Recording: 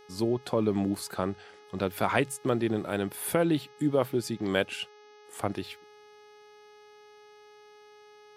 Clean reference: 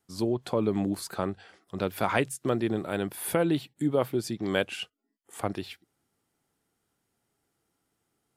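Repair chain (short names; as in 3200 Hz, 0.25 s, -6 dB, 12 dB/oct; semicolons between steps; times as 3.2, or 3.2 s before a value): de-hum 419.4 Hz, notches 15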